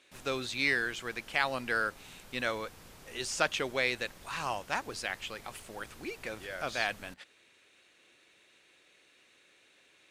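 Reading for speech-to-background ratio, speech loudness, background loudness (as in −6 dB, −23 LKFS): 19.5 dB, −34.0 LKFS, −53.5 LKFS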